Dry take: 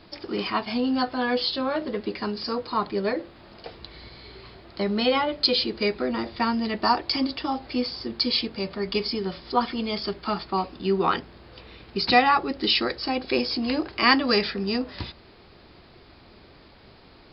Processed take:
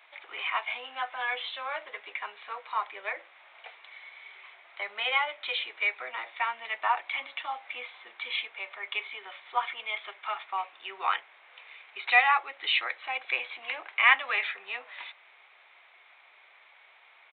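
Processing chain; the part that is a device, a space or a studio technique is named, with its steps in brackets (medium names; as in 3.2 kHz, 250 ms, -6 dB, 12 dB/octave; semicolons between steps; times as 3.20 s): musical greeting card (resampled via 8 kHz; high-pass 740 Hz 24 dB/octave; peaking EQ 2.2 kHz +11 dB 0.38 oct); trim -4 dB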